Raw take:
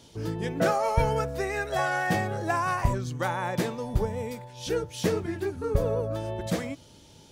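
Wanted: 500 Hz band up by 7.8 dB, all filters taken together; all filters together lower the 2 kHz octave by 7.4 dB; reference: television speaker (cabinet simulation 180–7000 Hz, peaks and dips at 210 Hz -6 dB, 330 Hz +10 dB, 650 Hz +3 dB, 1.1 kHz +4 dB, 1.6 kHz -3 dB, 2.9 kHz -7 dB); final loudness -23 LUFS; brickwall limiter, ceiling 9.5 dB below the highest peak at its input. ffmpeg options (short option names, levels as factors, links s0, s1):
-af "equalizer=f=500:t=o:g=7,equalizer=f=2000:t=o:g=-8.5,alimiter=limit=0.126:level=0:latency=1,highpass=f=180:w=0.5412,highpass=f=180:w=1.3066,equalizer=f=210:t=q:w=4:g=-6,equalizer=f=330:t=q:w=4:g=10,equalizer=f=650:t=q:w=4:g=3,equalizer=f=1100:t=q:w=4:g=4,equalizer=f=1600:t=q:w=4:g=-3,equalizer=f=2900:t=q:w=4:g=-7,lowpass=f=7000:w=0.5412,lowpass=f=7000:w=1.3066,volume=1.41"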